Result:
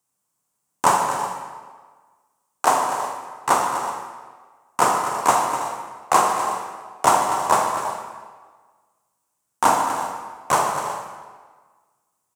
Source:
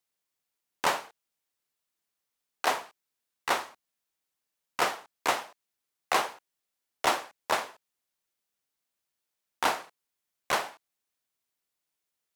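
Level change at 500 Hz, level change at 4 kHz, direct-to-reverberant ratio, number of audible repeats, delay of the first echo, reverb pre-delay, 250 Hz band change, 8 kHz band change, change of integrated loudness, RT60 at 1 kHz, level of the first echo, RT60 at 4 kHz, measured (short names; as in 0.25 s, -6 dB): +9.5 dB, +2.0 dB, 1.0 dB, 4, 0.151 s, 28 ms, +11.5 dB, +12.5 dB, +9.0 dB, 1.5 s, -13.0 dB, 1.1 s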